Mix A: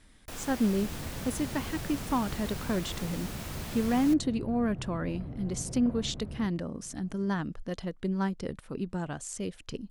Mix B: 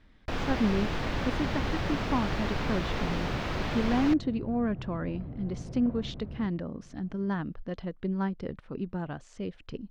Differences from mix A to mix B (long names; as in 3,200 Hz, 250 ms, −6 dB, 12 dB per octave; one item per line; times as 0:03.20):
first sound +11.5 dB
master: add high-frequency loss of the air 230 metres